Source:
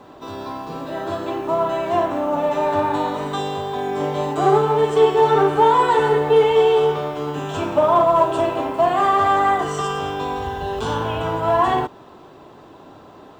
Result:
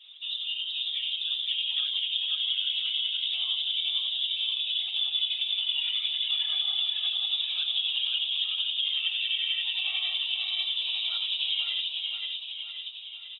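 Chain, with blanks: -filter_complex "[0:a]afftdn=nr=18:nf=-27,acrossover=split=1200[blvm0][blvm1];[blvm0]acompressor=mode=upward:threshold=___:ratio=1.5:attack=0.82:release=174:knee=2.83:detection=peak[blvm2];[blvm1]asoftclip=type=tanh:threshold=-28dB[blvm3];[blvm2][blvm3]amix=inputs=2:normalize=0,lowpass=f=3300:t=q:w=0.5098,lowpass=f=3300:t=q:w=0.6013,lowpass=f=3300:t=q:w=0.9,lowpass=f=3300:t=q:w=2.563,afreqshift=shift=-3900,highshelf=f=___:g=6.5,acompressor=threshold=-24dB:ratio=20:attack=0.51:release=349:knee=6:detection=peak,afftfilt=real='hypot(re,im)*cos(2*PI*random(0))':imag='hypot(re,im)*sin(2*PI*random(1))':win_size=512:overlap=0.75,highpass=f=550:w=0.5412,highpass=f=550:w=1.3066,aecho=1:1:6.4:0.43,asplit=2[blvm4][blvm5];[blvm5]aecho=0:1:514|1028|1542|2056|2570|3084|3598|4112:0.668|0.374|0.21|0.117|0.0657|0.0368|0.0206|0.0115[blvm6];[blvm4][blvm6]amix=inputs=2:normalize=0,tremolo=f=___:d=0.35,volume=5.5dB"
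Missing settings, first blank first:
-33dB, 2100, 11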